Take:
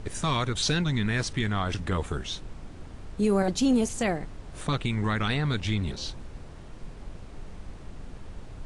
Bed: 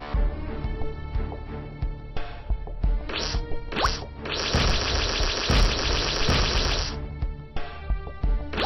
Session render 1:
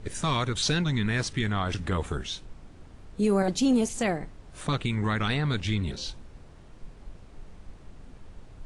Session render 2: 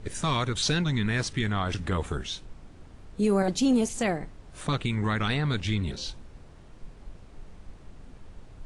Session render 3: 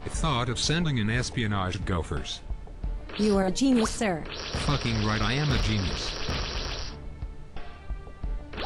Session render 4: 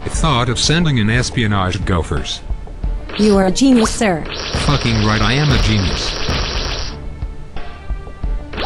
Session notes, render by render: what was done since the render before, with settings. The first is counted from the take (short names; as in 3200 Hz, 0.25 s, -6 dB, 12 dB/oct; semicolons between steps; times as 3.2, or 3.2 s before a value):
noise print and reduce 6 dB
nothing audible
add bed -8.5 dB
gain +12 dB; limiter -3 dBFS, peak gain reduction 2 dB